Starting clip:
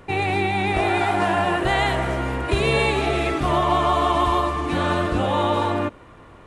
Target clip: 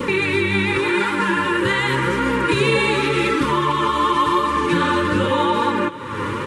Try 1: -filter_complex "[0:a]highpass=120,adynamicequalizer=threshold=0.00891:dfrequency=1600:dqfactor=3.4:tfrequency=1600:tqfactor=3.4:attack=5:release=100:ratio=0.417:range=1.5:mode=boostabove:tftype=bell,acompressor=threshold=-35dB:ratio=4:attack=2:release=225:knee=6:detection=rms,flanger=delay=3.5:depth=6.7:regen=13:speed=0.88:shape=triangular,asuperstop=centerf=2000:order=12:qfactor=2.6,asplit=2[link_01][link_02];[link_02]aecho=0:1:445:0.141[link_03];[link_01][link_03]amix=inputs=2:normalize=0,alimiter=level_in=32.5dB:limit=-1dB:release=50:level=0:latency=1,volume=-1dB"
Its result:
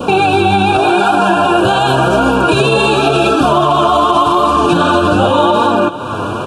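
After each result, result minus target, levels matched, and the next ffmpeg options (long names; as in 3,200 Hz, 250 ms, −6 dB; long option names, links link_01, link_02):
downward compressor: peak gain reduction −8.5 dB; 2,000 Hz band −5.0 dB
-filter_complex "[0:a]highpass=120,adynamicequalizer=threshold=0.00891:dfrequency=1600:dqfactor=3.4:tfrequency=1600:tqfactor=3.4:attack=5:release=100:ratio=0.417:range=1.5:mode=boostabove:tftype=bell,acompressor=threshold=-46.5dB:ratio=4:attack=2:release=225:knee=6:detection=rms,flanger=delay=3.5:depth=6.7:regen=13:speed=0.88:shape=triangular,asuperstop=centerf=2000:order=12:qfactor=2.6,asplit=2[link_01][link_02];[link_02]aecho=0:1:445:0.141[link_03];[link_01][link_03]amix=inputs=2:normalize=0,alimiter=level_in=32.5dB:limit=-1dB:release=50:level=0:latency=1,volume=-1dB"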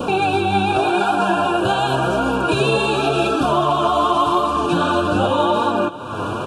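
2,000 Hz band −5.0 dB
-filter_complex "[0:a]highpass=120,adynamicequalizer=threshold=0.00891:dfrequency=1600:dqfactor=3.4:tfrequency=1600:tqfactor=3.4:attack=5:release=100:ratio=0.417:range=1.5:mode=boostabove:tftype=bell,acompressor=threshold=-46.5dB:ratio=4:attack=2:release=225:knee=6:detection=rms,flanger=delay=3.5:depth=6.7:regen=13:speed=0.88:shape=triangular,asuperstop=centerf=700:order=12:qfactor=2.6,asplit=2[link_01][link_02];[link_02]aecho=0:1:445:0.141[link_03];[link_01][link_03]amix=inputs=2:normalize=0,alimiter=level_in=32.5dB:limit=-1dB:release=50:level=0:latency=1,volume=-1dB"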